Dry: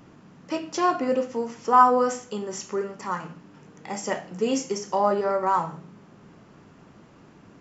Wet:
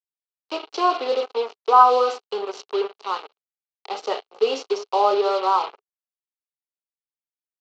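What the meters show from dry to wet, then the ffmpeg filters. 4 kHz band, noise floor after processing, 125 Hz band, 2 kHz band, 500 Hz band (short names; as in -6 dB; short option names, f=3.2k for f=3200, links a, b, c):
+8.0 dB, under -85 dBFS, under -25 dB, -0.5 dB, +3.5 dB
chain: -af "acrusher=bits=4:mix=0:aa=0.5,highpass=f=380:w=0.5412,highpass=f=380:w=1.3066,equalizer=f=420:t=q:w=4:g=10,equalizer=f=790:t=q:w=4:g=6,equalizer=f=1.2k:t=q:w=4:g=6,equalizer=f=1.8k:t=q:w=4:g=-9,equalizer=f=2.9k:t=q:w=4:g=7,equalizer=f=4.2k:t=q:w=4:g=9,lowpass=f=5.1k:w=0.5412,lowpass=f=5.1k:w=1.3066,volume=-1dB"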